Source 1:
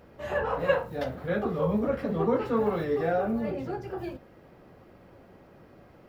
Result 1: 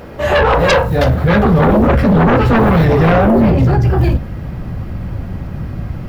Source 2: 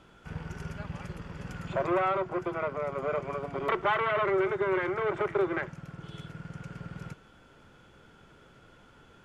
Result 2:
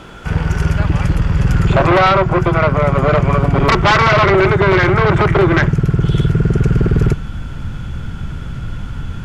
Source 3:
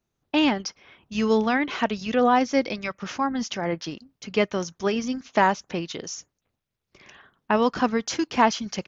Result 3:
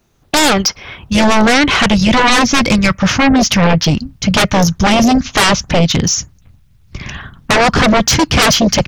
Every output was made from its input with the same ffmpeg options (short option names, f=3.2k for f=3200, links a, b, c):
-af "asubboost=boost=11.5:cutoff=130,aeval=exprs='0.473*sin(PI/2*7.08*val(0)/0.473)':c=same"